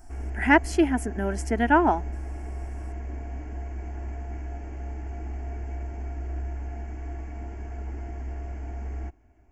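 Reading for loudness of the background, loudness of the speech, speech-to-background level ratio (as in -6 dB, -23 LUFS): -36.0 LUFS, -23.5 LUFS, 12.5 dB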